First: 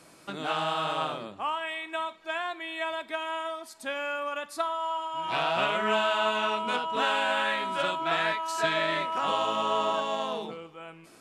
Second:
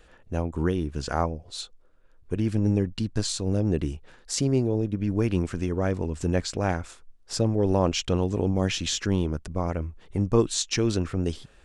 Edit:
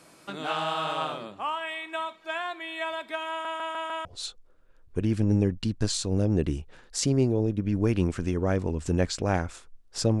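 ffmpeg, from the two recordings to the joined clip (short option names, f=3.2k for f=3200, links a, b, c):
-filter_complex "[0:a]apad=whole_dur=10.2,atrim=end=10.2,asplit=5[a][b][c][d][e];[a]atrim=end=3.452[f];[b]atrim=start=3.298:end=3.452[g];[c]atrim=start=3.298:end=3.452[h];[d]atrim=start=3.298:end=3.452[i];[e]atrim=start=3.298:end=3.452[j];[1:a]atrim=start=1.398:end=7.55[k];[f][g]acrossfade=d=0.004:c1=hsin:c2=hsin[l];[l][h]acrossfade=d=0.004:c1=hsin:c2=hsin[m];[m][i]acrossfade=d=0.004:c1=hsin:c2=hsin[n];[n][j]acrossfade=d=0.004:c1=hsin:c2=hsin[o];[o][k]acrossfade=d=0.004:c1=hsin:c2=hsin"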